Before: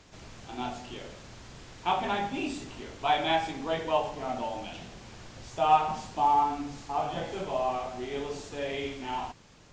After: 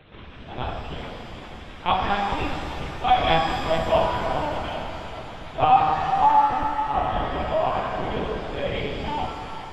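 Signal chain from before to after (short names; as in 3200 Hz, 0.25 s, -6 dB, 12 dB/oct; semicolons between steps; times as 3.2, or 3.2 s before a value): 7.4–7.93 HPF 200 Hz 6 dB/oct; AM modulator 60 Hz, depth 75%; split-band echo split 410 Hz, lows 0.194 s, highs 0.409 s, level -11 dB; LPC vocoder at 8 kHz pitch kept; shimmer reverb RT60 2.1 s, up +7 st, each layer -8 dB, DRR 3.5 dB; gain +9 dB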